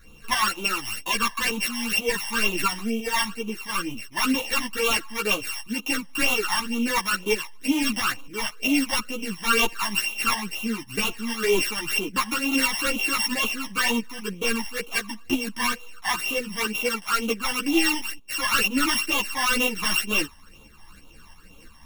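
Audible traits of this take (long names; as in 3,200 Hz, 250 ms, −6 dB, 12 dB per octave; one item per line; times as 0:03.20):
a buzz of ramps at a fixed pitch in blocks of 16 samples
phaser sweep stages 12, 2.1 Hz, lowest notch 420–1,700 Hz
tremolo saw up 3 Hz, depth 45%
a shimmering, thickened sound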